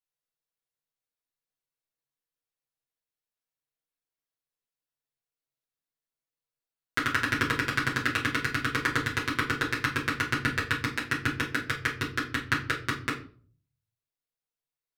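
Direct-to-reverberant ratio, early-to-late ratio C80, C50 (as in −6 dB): −7.5 dB, 14.0 dB, 9.0 dB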